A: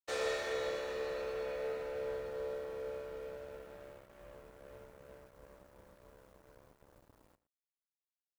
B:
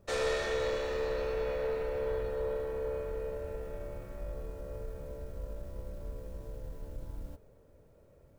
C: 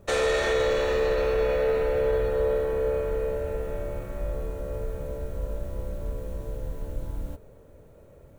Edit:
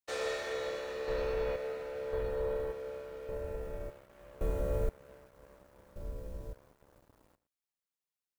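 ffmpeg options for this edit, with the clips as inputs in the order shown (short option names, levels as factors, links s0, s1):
-filter_complex "[1:a]asplit=4[s0][s1][s2][s3];[0:a]asplit=6[s4][s5][s6][s7][s8][s9];[s4]atrim=end=1.082[s10];[s0]atrim=start=1.078:end=1.562[s11];[s5]atrim=start=1.558:end=2.132[s12];[s1]atrim=start=2.128:end=2.722[s13];[s6]atrim=start=2.718:end=3.292[s14];[s2]atrim=start=3.288:end=3.902[s15];[s7]atrim=start=3.898:end=4.412[s16];[2:a]atrim=start=4.408:end=4.892[s17];[s8]atrim=start=4.888:end=5.962[s18];[s3]atrim=start=5.958:end=6.532[s19];[s9]atrim=start=6.528[s20];[s10][s11]acrossfade=d=0.004:c1=hsin:c2=hsin[s21];[s21][s12]acrossfade=d=0.004:c1=hsin:c2=hsin[s22];[s22][s13]acrossfade=d=0.004:c1=hsin:c2=hsin[s23];[s23][s14]acrossfade=d=0.004:c1=hsin:c2=hsin[s24];[s24][s15]acrossfade=d=0.004:c1=hsin:c2=hsin[s25];[s25][s16]acrossfade=d=0.004:c1=hsin:c2=hsin[s26];[s26][s17]acrossfade=d=0.004:c1=hsin:c2=hsin[s27];[s27][s18]acrossfade=d=0.004:c1=hsin:c2=hsin[s28];[s28][s19]acrossfade=d=0.004:c1=hsin:c2=hsin[s29];[s29][s20]acrossfade=d=0.004:c1=hsin:c2=hsin"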